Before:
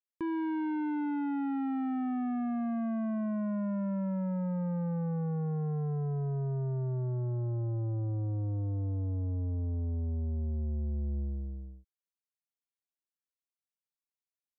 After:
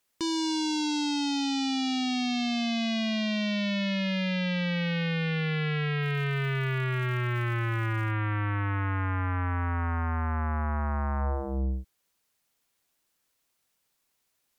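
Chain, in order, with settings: sine folder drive 11 dB, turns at -31 dBFS; 6.02–8.10 s: crackle 290 per s -47 dBFS; trim +5 dB

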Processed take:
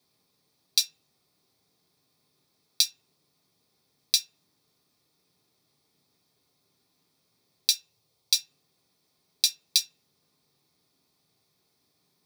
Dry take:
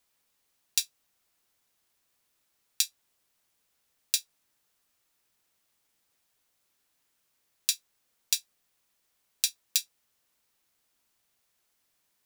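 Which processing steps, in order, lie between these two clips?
7.71–8.33 s: fifteen-band graphic EQ 100 Hz +5 dB, 250 Hz -10 dB, 1.6 kHz -7 dB; reverberation RT60 0.30 s, pre-delay 3 ms, DRR 1 dB; trim -3 dB

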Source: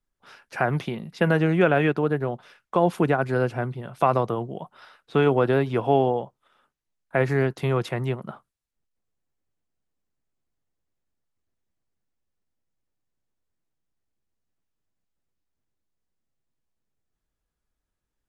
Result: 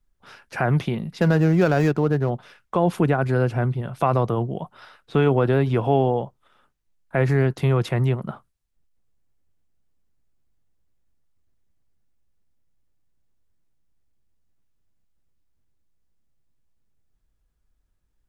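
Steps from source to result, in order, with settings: 1.21–2.30 s: median filter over 15 samples; bass shelf 130 Hz +12 dB; in parallel at +2 dB: peak limiter -16.5 dBFS, peak gain reduction 10.5 dB; on the sum: trim -4.5 dB

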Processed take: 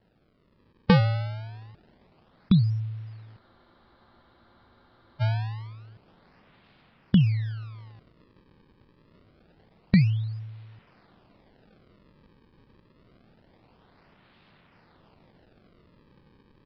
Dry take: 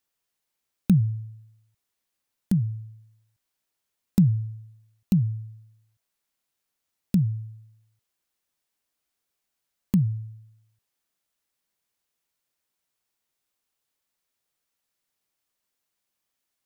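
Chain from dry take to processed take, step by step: spectral levelling over time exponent 0.6; level rider gain up to 8 dB; decimation with a swept rate 36×, swing 160% 0.26 Hz; resampled via 11.025 kHz; spectral freeze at 3.42 s, 1.80 s; trim -5.5 dB

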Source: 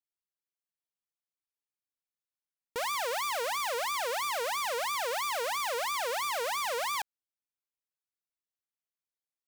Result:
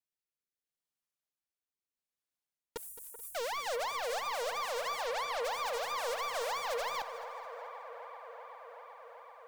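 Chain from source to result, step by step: 5.04–5.45 s: low-pass 5.9 kHz; rotary cabinet horn 0.75 Hz, later 6.7 Hz, at 2.37 s; 2.77–3.35 s: inverse Chebyshev band-stop 160–4200 Hz, stop band 50 dB; hard clipper -34 dBFS, distortion -9 dB; feedback echo behind a band-pass 383 ms, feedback 82%, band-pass 850 Hz, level -10 dB; bit-crushed delay 216 ms, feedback 55%, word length 11-bit, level -14.5 dB; trim +1.5 dB

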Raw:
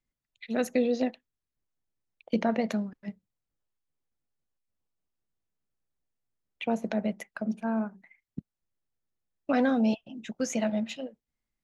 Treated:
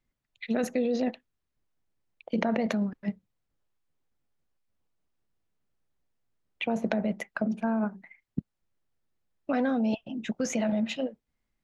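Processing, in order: in parallel at +2 dB: compressor with a negative ratio -31 dBFS, ratio -0.5; on the sum: treble shelf 5.1 kHz -10 dB; trim -3.5 dB

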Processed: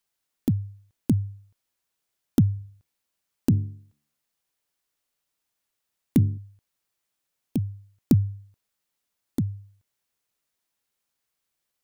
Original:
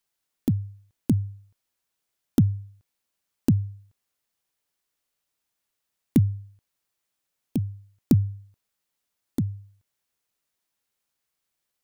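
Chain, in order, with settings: 2.55–6.38 s: de-hum 73 Hz, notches 6

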